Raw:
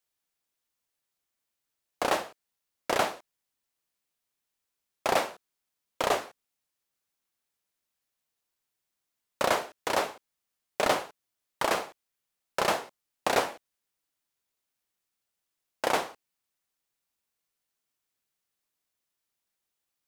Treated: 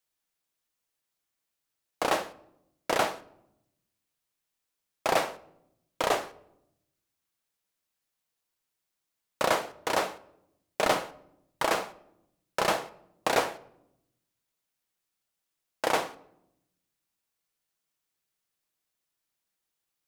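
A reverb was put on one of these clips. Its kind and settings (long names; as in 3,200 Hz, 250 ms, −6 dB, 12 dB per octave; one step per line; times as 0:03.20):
rectangular room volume 2,300 cubic metres, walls furnished, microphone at 0.61 metres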